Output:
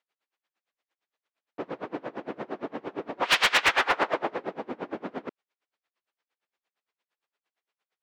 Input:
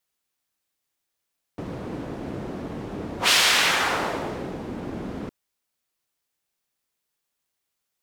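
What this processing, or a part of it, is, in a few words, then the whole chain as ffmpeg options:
helicopter radio: -af "highpass=380,lowpass=2.8k,aeval=exprs='val(0)*pow(10,-27*(0.5-0.5*cos(2*PI*8.7*n/s))/20)':c=same,asoftclip=type=hard:threshold=-22.5dB,volume=7.5dB"

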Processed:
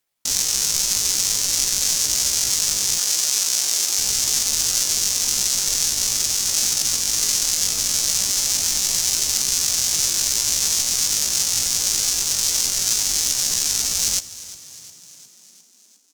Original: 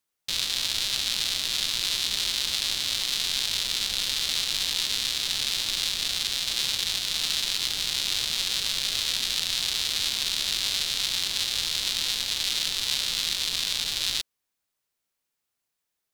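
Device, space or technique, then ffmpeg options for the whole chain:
chipmunk voice: -filter_complex "[0:a]asettb=1/sr,asplit=3[a][b][c];[a]atrim=end=3.004[d];[b]atrim=start=3:end=4.01,asetpts=PTS-STARTPTS,afade=t=in:d=0.004:c=qsin,afade=t=out:st=1.006:d=0.004:c=qsin,highpass=210[e];[c]atrim=start=4.006[f];[d][e]acrossfade=d=0.004:c1=hsin:c2=qsin[g];[g][f]acrossfade=d=0.004:c1=qsin:c2=hsin,asetrate=70004,aresample=44100,atempo=0.629961,asplit=7[h][i][j][k][l][m][n];[i]adelay=355,afreqshift=38,volume=-17.5dB[o];[j]adelay=710,afreqshift=76,volume=-21.7dB[p];[k]adelay=1065,afreqshift=114,volume=-25.8dB[q];[l]adelay=1420,afreqshift=152,volume=-30dB[r];[m]adelay=1775,afreqshift=190,volume=-34.1dB[s];[n]adelay=2130,afreqshift=228,volume=-38.3dB[t];[h][o][p][q][r][s][t]amix=inputs=7:normalize=0,volume=7.5dB"

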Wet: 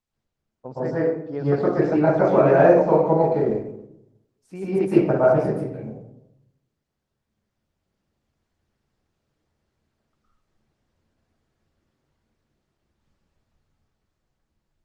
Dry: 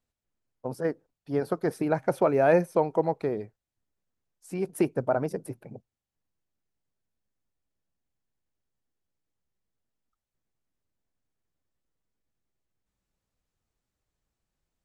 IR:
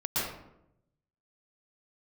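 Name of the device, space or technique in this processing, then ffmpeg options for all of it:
speakerphone in a meeting room: -filter_complex "[0:a]lowpass=5.6k,asettb=1/sr,asplit=3[a][b][c];[a]atrim=end=2.514[d];[b]atrim=start=2.51:end=3.41,asetpts=PTS-STARTPTS,afade=t=in:d=0.004:c=qsin,afade=t=out:st=0.896:d=0.004:c=qsin,adynamicequalizer=threshold=0.00398:dfrequency=2600:dqfactor=1.4:tfrequency=2600:tqfactor=1.4:attack=5:release=100:ratio=0.375:range=1.5:mode=cutabove:tftype=bell[e];[c]atrim=start=3.406[f];[d][e]acrossfade=d=0.004:c1=hsin:c2=qsin[g];[g][f]acrossfade=d=0.004:c1=qsin:c2=hsin[h];[1:a]atrim=start_sample=2205[i];[h][i]afir=irnorm=-1:irlink=0,dynaudnorm=f=500:g=9:m=10dB,volume=-1.5dB" -ar 48000 -c:a libopus -b:a 20k

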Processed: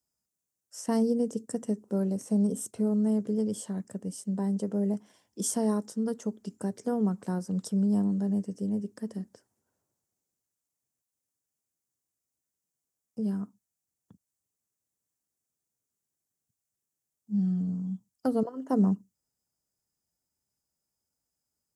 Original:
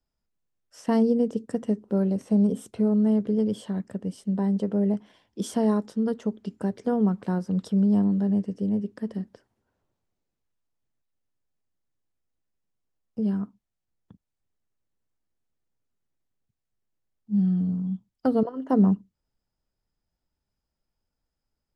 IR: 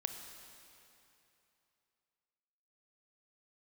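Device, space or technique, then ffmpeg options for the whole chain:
budget condenser microphone: -af "highpass=90,highshelf=f=5k:t=q:w=1.5:g=12,volume=-4.5dB"

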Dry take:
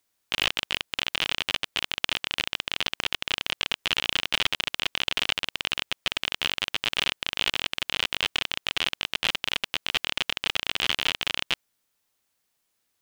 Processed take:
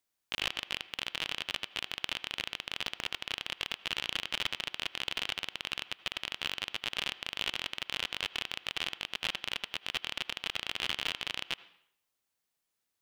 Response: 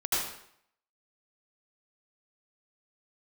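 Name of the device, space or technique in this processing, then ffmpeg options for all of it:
filtered reverb send: -filter_complex "[0:a]asplit=2[a][b];[b]highpass=f=160:p=1,lowpass=3.8k[c];[1:a]atrim=start_sample=2205[d];[c][d]afir=irnorm=-1:irlink=0,volume=-25dB[e];[a][e]amix=inputs=2:normalize=0,volume=-8.5dB"

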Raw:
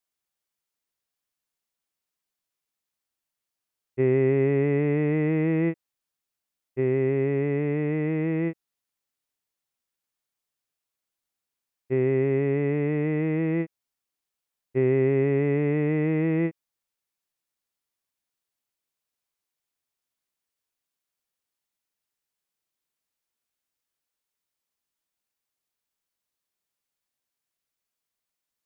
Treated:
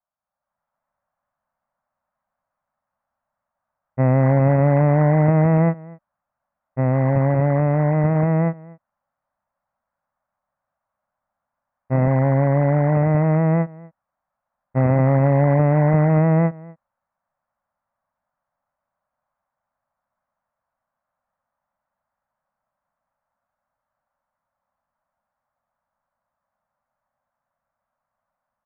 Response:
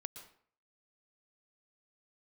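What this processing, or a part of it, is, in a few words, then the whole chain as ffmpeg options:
action camera in a waterproof case: -filter_complex "[0:a]lowpass=f=1.4k:w=0.5412,lowpass=f=1.4k:w=1.3066,firequalizer=gain_entry='entry(230,0);entry(390,-24);entry(560,8);entry(2500,2)':delay=0.05:min_phase=1,asplit=2[a][b];[b]adelay=244.9,volume=-22dB,highshelf=f=4k:g=-5.51[c];[a][c]amix=inputs=2:normalize=0,dynaudnorm=f=100:g=9:m=11dB" -ar 44100 -c:a aac -b:a 48k

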